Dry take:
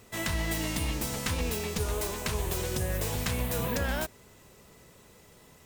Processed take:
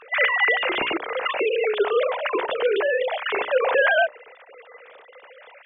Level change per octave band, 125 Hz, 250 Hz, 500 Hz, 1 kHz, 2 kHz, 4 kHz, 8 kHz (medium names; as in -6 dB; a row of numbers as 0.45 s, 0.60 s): under -25 dB, -1.0 dB, +14.5 dB, +12.0 dB, +15.5 dB, +7.0 dB, under -40 dB